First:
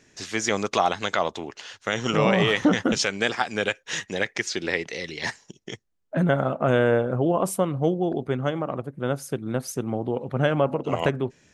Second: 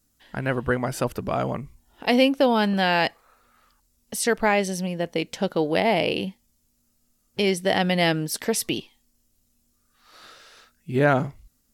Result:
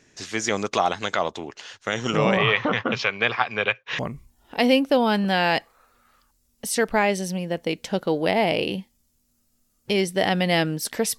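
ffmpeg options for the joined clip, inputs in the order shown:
-filter_complex "[0:a]asettb=1/sr,asplit=3[a][b][c];[a]atrim=end=2.374[d];[b]atrim=start=2.37:end=3.99,asetpts=PTS-STARTPTS,afade=t=in:d=0.004:c=qsin,afade=t=out:st=1.616:d=0.004:c=qsin,highpass=110,equalizer=f=120:t=q:w=4:g=8,equalizer=f=180:t=q:w=4:g=-8,equalizer=f=300:t=q:w=4:g=-10,equalizer=f=1.1k:t=q:w=4:g=9,equalizer=f=2.4k:t=q:w=4:g=7,lowpass=f=4.2k:w=0.5412,lowpass=f=4.2k:w=1.3066[e];[c]atrim=start=3.986[f];[d][e]acrossfade=d=0.004:c1=hsin:c2=qsin[g];[g][f]acrossfade=d=0.004:c1=qsin:c2=hsin,apad=whole_dur=11.18,atrim=end=11.18,atrim=end=3.992[h];[1:a]atrim=start=1.478:end=8.67[i];[h][i]acrossfade=d=0.004:c1=hsin:c2=hsin"

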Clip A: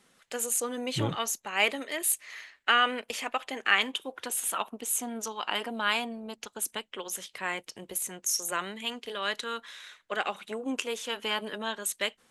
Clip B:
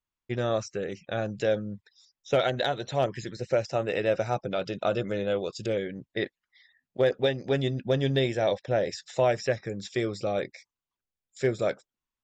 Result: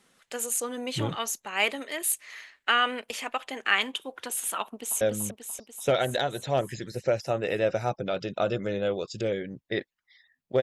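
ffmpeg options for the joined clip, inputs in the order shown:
-filter_complex "[0:a]apad=whole_dur=10.62,atrim=end=10.62,atrim=end=5.012[a];[1:a]atrim=start=1.458:end=7.07[b];[a][b]acrossfade=d=0.004:c1=hsin:c2=hsin,asplit=2[c][d];[d]afade=t=in:st=4.62:d=0.01,afade=t=out:st=5.01:d=0.01,aecho=0:1:290|580|870|1160|1450|1740|2030|2320|2610|2900:0.630957|0.410122|0.266579|0.173277|0.11263|0.0732094|0.0475861|0.030931|0.0201051|0.0130683[e];[c][e]amix=inputs=2:normalize=0"

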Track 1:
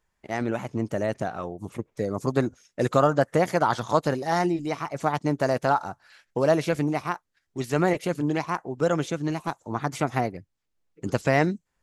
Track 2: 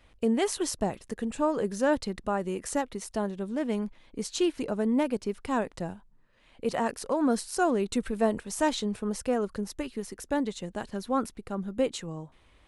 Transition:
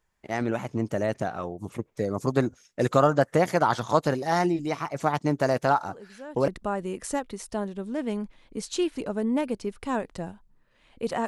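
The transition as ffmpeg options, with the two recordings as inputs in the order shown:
-filter_complex "[1:a]asplit=2[a][b];[0:a]apad=whole_dur=11.27,atrim=end=11.27,atrim=end=6.482[c];[b]atrim=start=2.098:end=6.89[d];[a]atrim=start=1.5:end=2.1,asetpts=PTS-STARTPTS,volume=-16.5dB,afade=t=in:d=0.004:c=hsin,afade=t=out:st=0.596:d=0.004:c=hsin,adelay=5880[e];[c][d]acrossfade=d=0.004:c1=hsin:c2=hsin[f];[f][e]amix=inputs=2:normalize=0"

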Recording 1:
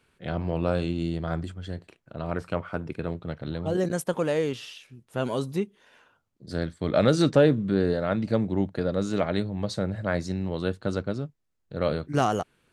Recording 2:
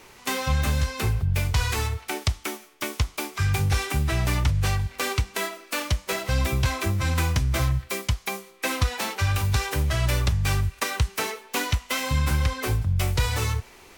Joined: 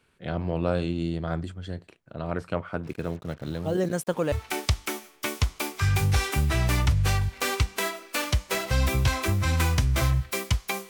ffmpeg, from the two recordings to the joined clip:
-filter_complex "[0:a]asplit=3[a][b][c];[a]afade=t=out:st=2.83:d=0.02[d];[b]acrusher=bits=7:mix=0:aa=0.5,afade=t=in:st=2.83:d=0.02,afade=t=out:st=4.32:d=0.02[e];[c]afade=t=in:st=4.32:d=0.02[f];[d][e][f]amix=inputs=3:normalize=0,apad=whole_dur=10.89,atrim=end=10.89,atrim=end=4.322[g];[1:a]atrim=start=1.898:end=8.47[h];[g][h]acrossfade=d=0.004:c1=hsin:c2=hsin"

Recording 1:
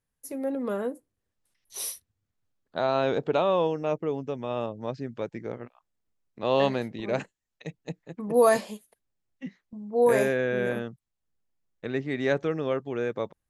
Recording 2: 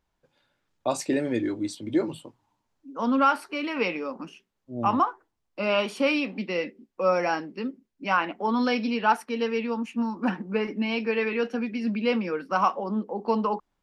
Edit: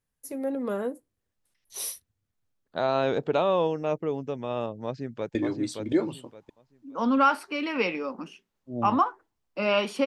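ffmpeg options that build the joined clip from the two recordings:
-filter_complex "[0:a]apad=whole_dur=10.06,atrim=end=10.06,atrim=end=5.352[a];[1:a]atrim=start=1.358:end=6.07[b];[a][b]acrossfade=d=0.004:c1=hsin:c2=hsin,asplit=2[c][d];[d]afade=t=in:st=4.85:d=0.01,afade=t=out:st=5.35:d=0.01,aecho=0:1:570|1140|1710:0.595662|0.148916|0.0372289[e];[c][e]amix=inputs=2:normalize=0"

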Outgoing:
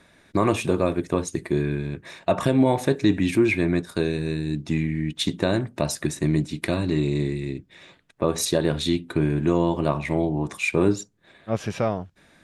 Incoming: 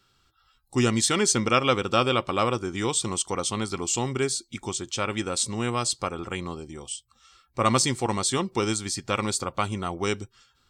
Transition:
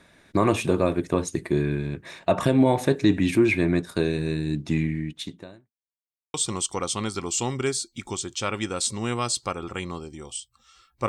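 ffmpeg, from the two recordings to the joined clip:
-filter_complex "[0:a]apad=whole_dur=11.08,atrim=end=11.08,asplit=2[a][b];[a]atrim=end=5.74,asetpts=PTS-STARTPTS,afade=t=out:st=4.86:d=0.88:c=qua[c];[b]atrim=start=5.74:end=6.34,asetpts=PTS-STARTPTS,volume=0[d];[1:a]atrim=start=2.9:end=7.64,asetpts=PTS-STARTPTS,afade=t=in:d=0.004:c=hsin[e];[c][d][e]concat=n=3:v=0:a=1"

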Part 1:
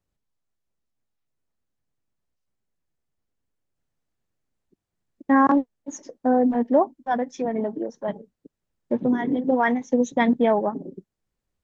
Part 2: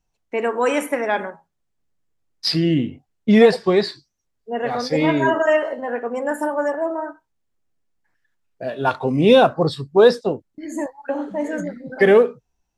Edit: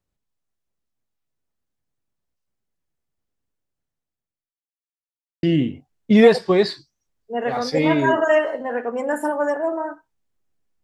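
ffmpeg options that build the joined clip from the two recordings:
-filter_complex "[0:a]apad=whole_dur=10.83,atrim=end=10.83,asplit=2[a][b];[a]atrim=end=4.54,asetpts=PTS-STARTPTS,afade=t=out:st=3.47:d=1.07[c];[b]atrim=start=4.54:end=5.43,asetpts=PTS-STARTPTS,volume=0[d];[1:a]atrim=start=2.61:end=8.01,asetpts=PTS-STARTPTS,afade=t=in:d=0.004:c=hsin[e];[c][d][e]concat=n=3:v=0:a=1"

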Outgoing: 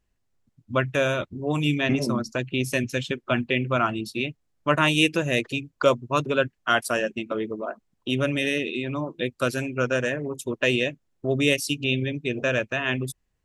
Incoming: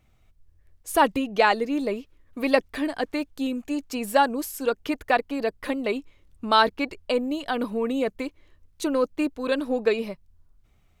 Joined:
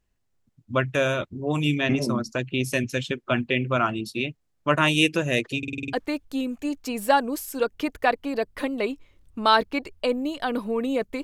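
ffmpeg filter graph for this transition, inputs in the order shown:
-filter_complex "[0:a]apad=whole_dur=11.23,atrim=end=11.23,asplit=7[a][b][c][d][e][f][g];[a]atrim=end=5.632[h];[b]atrim=start=5.578:end=5.632[i];[c]atrim=start=5.578:end=5.632[j];[d]atrim=start=5.578:end=5.632[k];[e]atrim=start=5.578:end=5.632[l];[f]atrim=start=5.578:end=5.632[m];[g]atrim=start=5.578:end=5.632[n];[1:a]atrim=start=2.988:end=8.29[o];[h][i]acrossfade=d=0.004:c1=hsin:c2=hsin[p];[p][j]acrossfade=d=0.004:c1=hsin:c2=hsin[q];[q][k]acrossfade=d=0.004:c1=hsin:c2=hsin[r];[r][l]acrossfade=d=0.004:c1=hsin:c2=hsin[s];[s][m]acrossfade=d=0.004:c1=hsin:c2=hsin[t];[t][n]acrossfade=d=0.004:c1=hsin:c2=hsin[u];[u][o]acrossfade=d=0.004:c1=hsin:c2=hsin"

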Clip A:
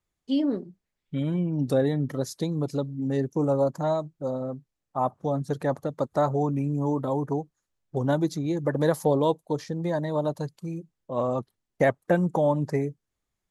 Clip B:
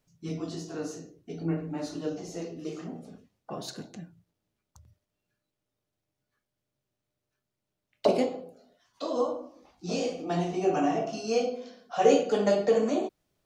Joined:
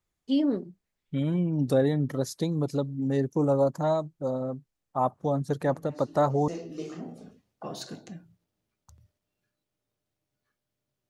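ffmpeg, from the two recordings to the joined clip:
-filter_complex "[1:a]asplit=2[a][b];[0:a]apad=whole_dur=11.09,atrim=end=11.09,atrim=end=6.482[c];[b]atrim=start=2.348:end=6.96[d];[a]atrim=start=1.53:end=2.35,asetpts=PTS-STARTPTS,volume=-13dB,afade=t=in:d=0.004:c=hsin,afade=t=out:st=0.816:d=0.004:c=hsin,adelay=5660[e];[c][d]acrossfade=d=0.004:c1=hsin:c2=hsin[f];[f][e]amix=inputs=2:normalize=0"

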